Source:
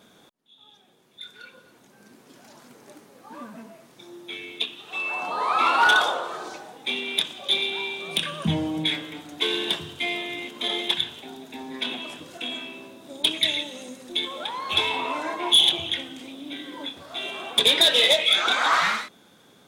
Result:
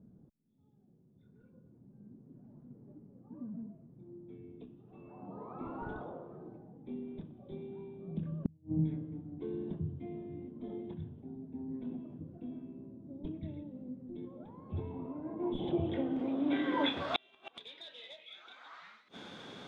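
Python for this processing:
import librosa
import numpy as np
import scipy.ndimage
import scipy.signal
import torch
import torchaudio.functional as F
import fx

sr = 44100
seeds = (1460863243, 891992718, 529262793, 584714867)

y = fx.filter_sweep_lowpass(x, sr, from_hz=150.0, to_hz=4100.0, start_s=15.22, end_s=17.3, q=0.88)
y = fx.gate_flip(y, sr, shuts_db=-24.0, range_db=-39)
y = F.gain(torch.from_numpy(y), 6.5).numpy()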